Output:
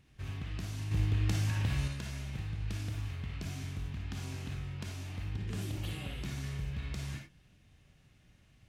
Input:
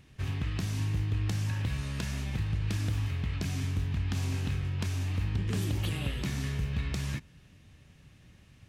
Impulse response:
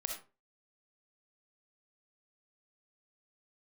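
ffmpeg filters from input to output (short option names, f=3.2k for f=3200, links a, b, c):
-filter_complex "[0:a]asettb=1/sr,asplit=3[a][b][c];[a]atrim=end=0.914[d];[b]atrim=start=0.91:end=1.88,asetpts=PTS-STARTPTS,afade=t=in:d=0.004:c=qsin,afade=t=out:st=0.966:d=0.004:c=qsin,acontrast=86[e];[c]atrim=start=1.876[f];[d][e]acrossfade=d=0.004:c1=hsin:c2=qsin[g];[g][f]acrossfade=d=0.004:c1=qsin:c2=hsin[h];[1:a]atrim=start_sample=2205,afade=t=out:st=0.16:d=0.01,atrim=end_sample=7497,asetrate=48510,aresample=44100[i];[h][i]afir=irnorm=-1:irlink=0,volume=-5.5dB"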